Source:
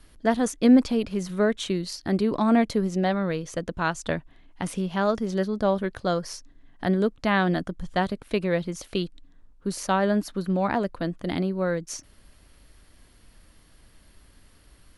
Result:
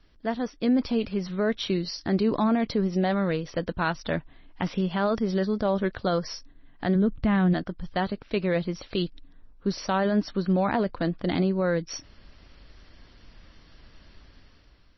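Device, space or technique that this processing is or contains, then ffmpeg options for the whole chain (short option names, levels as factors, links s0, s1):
low-bitrate web radio: -filter_complex "[0:a]asplit=3[s0][s1][s2];[s0]afade=t=out:st=6.95:d=0.02[s3];[s1]bass=f=250:g=15,treble=f=4000:g=-13,afade=t=in:st=6.95:d=0.02,afade=t=out:st=7.52:d=0.02[s4];[s2]afade=t=in:st=7.52:d=0.02[s5];[s3][s4][s5]amix=inputs=3:normalize=0,dynaudnorm=f=300:g=5:m=3.16,alimiter=limit=0.355:level=0:latency=1:release=15,volume=0.501" -ar 22050 -c:a libmp3lame -b:a 24k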